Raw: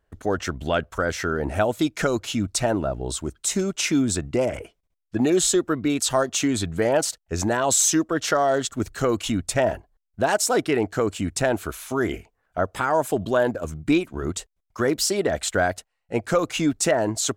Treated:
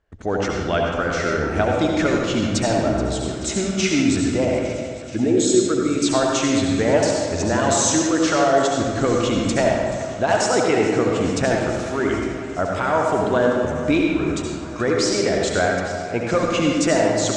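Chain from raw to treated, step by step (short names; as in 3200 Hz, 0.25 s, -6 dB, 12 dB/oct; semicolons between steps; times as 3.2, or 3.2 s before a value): 5.16–5.98 formant sharpening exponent 1.5; inverse Chebyshev low-pass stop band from 12000 Hz, stop band 40 dB; bell 2200 Hz +3 dB 0.29 oct; thinning echo 0.429 s, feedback 81%, high-pass 350 Hz, level -16.5 dB; reverb RT60 1.7 s, pre-delay 65 ms, DRR -0.5 dB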